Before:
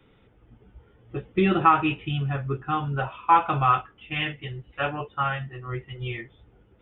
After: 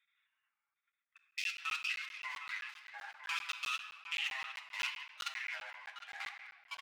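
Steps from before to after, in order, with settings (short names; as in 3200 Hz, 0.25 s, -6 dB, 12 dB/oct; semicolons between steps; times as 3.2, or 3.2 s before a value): Wiener smoothing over 15 samples; inverse Chebyshev high-pass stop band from 550 Hz, stop band 70 dB; level quantiser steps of 22 dB; outdoor echo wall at 130 m, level -7 dB; echoes that change speed 0.159 s, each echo -4 st, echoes 2, each echo -6 dB; reverb RT60 1.5 s, pre-delay 4 ms, DRR 6 dB; flange 0.94 Hz, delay 2.9 ms, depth 7.5 ms, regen +44%; crackling interface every 0.13 s, samples 512, zero, from 0.92; gain +11 dB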